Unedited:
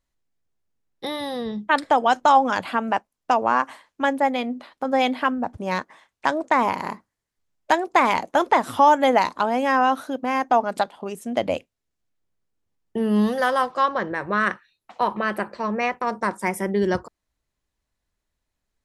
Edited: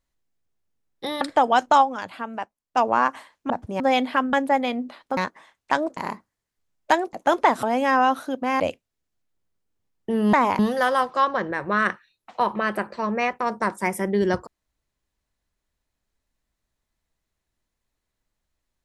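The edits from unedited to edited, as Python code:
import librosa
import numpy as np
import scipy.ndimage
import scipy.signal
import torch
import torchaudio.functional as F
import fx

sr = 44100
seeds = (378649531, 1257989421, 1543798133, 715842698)

y = fx.edit(x, sr, fx.cut(start_s=1.21, length_s=0.54),
    fx.fade_down_up(start_s=2.35, length_s=0.97, db=-8.5, fade_s=0.18, curve='exp'),
    fx.swap(start_s=4.04, length_s=0.84, other_s=5.41, other_length_s=0.3),
    fx.move(start_s=6.51, length_s=0.26, to_s=13.2),
    fx.cut(start_s=7.93, length_s=0.28),
    fx.cut(start_s=8.71, length_s=0.73),
    fx.cut(start_s=10.41, length_s=1.06), tone=tone)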